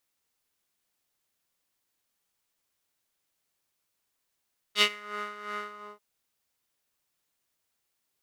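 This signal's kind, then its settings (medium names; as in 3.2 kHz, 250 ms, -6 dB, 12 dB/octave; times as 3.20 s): synth patch with tremolo G#4, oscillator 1 square, sub -1 dB, noise -6.5 dB, filter bandpass, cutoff 900 Hz, Q 2.4, filter envelope 2 oct, filter decay 0.30 s, filter sustain 35%, attack 65 ms, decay 0.07 s, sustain -18 dB, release 0.35 s, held 0.89 s, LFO 2.8 Hz, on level 10 dB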